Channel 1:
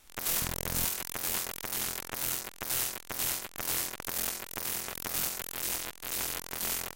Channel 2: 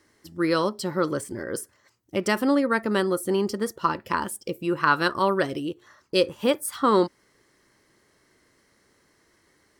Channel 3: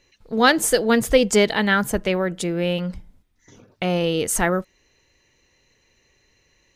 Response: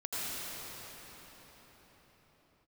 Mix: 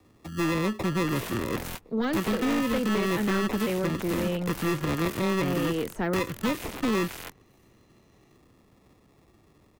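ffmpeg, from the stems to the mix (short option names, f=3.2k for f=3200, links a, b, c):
-filter_complex "[0:a]adelay=900,volume=-8.5dB[a];[1:a]firequalizer=gain_entry='entry(120,0);entry(850,-20);entry(5800,-3);entry(9400,-16)':delay=0.05:min_phase=1,acrusher=samples=29:mix=1:aa=0.000001,volume=2dB,asplit=2[b][c];[2:a]deesser=0.65,equalizer=f=290:t=o:w=1.9:g=9,adelay=1600,volume=-18.5dB[d];[c]apad=whole_len=346237[e];[a][e]sidechaingate=range=-42dB:threshold=-57dB:ratio=16:detection=peak[f];[f][b][d]amix=inputs=3:normalize=0,acrossover=split=150|310|1200|3500[g][h][i][j][k];[g]acompressor=threshold=-44dB:ratio=4[l];[h]acompressor=threshold=-36dB:ratio=4[m];[i]acompressor=threshold=-37dB:ratio=4[n];[j]acompressor=threshold=-37dB:ratio=4[o];[k]acompressor=threshold=-51dB:ratio=4[p];[l][m][n][o][p]amix=inputs=5:normalize=0,aeval=exprs='0.119*(cos(1*acos(clip(val(0)/0.119,-1,1)))-cos(1*PI/2))+0.0422*(cos(5*acos(clip(val(0)/0.119,-1,1)))-cos(5*PI/2))+0.0106*(cos(6*acos(clip(val(0)/0.119,-1,1)))-cos(6*PI/2))':c=same"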